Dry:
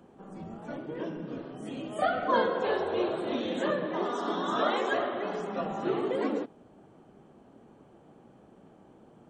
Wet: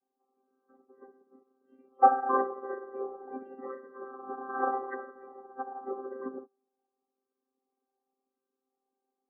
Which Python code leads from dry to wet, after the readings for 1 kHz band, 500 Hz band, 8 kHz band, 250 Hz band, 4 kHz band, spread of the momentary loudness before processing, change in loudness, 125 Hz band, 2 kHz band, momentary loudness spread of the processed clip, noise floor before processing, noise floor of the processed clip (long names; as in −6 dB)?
+2.5 dB, −7.5 dB, can't be measured, −10.5 dB, below −40 dB, 13 LU, −1.0 dB, below −25 dB, −8.0 dB, 20 LU, −57 dBFS, below −85 dBFS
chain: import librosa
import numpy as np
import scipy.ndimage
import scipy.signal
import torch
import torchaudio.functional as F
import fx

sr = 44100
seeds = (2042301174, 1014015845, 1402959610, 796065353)

y = fx.chord_vocoder(x, sr, chord='bare fifth', root=60)
y = fx.env_lowpass_down(y, sr, base_hz=1500.0, full_db=-24.5)
y = fx.high_shelf(y, sr, hz=3300.0, db=-5.0)
y = fx.spec_topn(y, sr, count=32)
y = fx.band_shelf(y, sr, hz=1000.0, db=9.5, octaves=1.7)
y = fx.echo_feedback(y, sr, ms=97, feedback_pct=56, wet_db=-22)
y = fx.upward_expand(y, sr, threshold_db=-41.0, expansion=2.5)
y = y * librosa.db_to_amplitude(3.5)